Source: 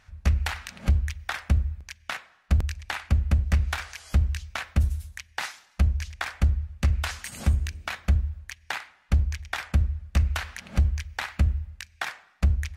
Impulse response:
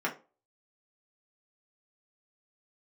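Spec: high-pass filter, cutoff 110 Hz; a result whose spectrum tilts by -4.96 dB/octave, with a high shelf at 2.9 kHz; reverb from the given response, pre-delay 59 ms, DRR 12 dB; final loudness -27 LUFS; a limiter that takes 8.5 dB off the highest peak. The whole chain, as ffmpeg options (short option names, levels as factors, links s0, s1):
-filter_complex "[0:a]highpass=110,highshelf=f=2900:g=-4.5,alimiter=limit=0.0708:level=0:latency=1,asplit=2[s0][s1];[1:a]atrim=start_sample=2205,adelay=59[s2];[s1][s2]afir=irnorm=-1:irlink=0,volume=0.1[s3];[s0][s3]amix=inputs=2:normalize=0,volume=2.99"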